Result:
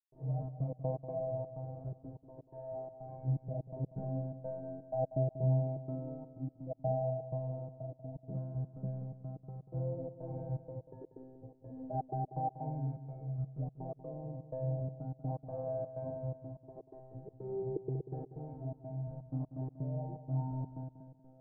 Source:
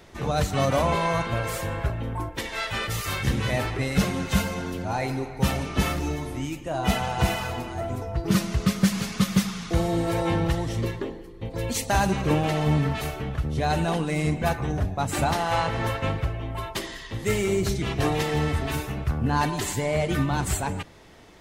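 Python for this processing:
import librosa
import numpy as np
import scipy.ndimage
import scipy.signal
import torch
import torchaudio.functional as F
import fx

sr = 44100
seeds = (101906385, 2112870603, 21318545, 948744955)

y = fx.low_shelf(x, sr, hz=410.0, db=-5.0)
y = fx.comb_fb(y, sr, f0_hz=130.0, decay_s=1.5, harmonics='all', damping=0.0, mix_pct=100)
y = fx.step_gate(y, sr, bpm=125, pattern='.xxx.x.x.xxx', floor_db=-60.0, edge_ms=4.5)
y = scipy.signal.sosfilt(scipy.signal.cheby1(4, 1.0, 680.0, 'lowpass', fs=sr, output='sos'), y)
y = y + 0.79 * np.pad(y, (int(6.4 * sr / 1000.0), 0))[:len(y)]
y = fx.echo_feedback(y, sr, ms=189, feedback_pct=27, wet_db=-12)
y = y * librosa.db_to_amplitude(10.5)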